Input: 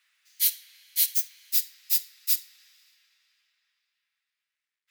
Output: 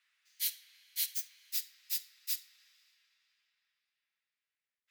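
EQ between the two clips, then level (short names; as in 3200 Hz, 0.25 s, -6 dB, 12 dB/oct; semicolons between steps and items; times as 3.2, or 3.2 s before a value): high shelf 6700 Hz -7 dB; -5.5 dB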